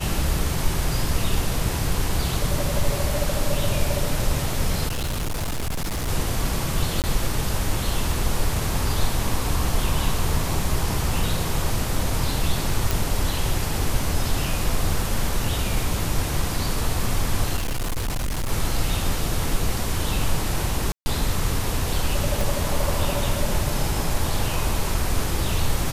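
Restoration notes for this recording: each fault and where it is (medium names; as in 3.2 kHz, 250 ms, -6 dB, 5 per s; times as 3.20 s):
4.87–6.09 s: clipped -22.5 dBFS
7.02–7.04 s: dropout 18 ms
12.91 s: pop
17.56–18.52 s: clipped -21.5 dBFS
20.92–21.06 s: dropout 140 ms
22.41 s: pop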